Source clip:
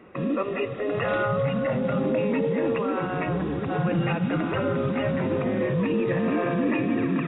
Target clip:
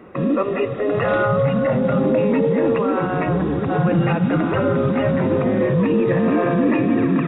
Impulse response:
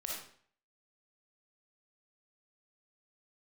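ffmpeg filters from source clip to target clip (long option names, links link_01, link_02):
-af "equalizer=frequency=2700:width_type=o:width=1.1:gain=-5.5,acontrast=88"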